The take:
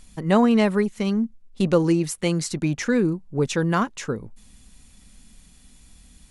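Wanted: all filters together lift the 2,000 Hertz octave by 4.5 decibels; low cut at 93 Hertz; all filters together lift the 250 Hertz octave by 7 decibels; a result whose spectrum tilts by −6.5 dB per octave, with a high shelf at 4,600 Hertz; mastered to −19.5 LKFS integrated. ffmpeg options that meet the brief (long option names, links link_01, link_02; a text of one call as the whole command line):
ffmpeg -i in.wav -af "highpass=93,equalizer=frequency=250:width_type=o:gain=9,equalizer=frequency=2000:width_type=o:gain=5,highshelf=frequency=4600:gain=3.5,volume=-2.5dB" out.wav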